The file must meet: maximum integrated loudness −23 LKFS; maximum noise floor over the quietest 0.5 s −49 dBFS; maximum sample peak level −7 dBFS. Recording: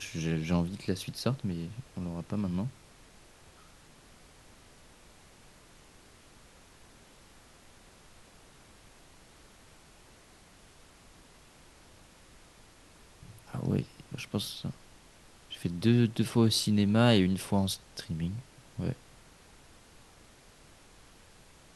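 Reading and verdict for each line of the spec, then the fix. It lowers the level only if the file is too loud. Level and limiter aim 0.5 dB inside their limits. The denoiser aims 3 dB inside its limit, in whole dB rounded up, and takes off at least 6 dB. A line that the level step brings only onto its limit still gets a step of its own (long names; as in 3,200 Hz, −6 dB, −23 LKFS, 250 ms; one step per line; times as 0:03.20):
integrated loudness −31.0 LKFS: in spec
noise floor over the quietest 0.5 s −57 dBFS: in spec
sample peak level −10.5 dBFS: in spec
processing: no processing needed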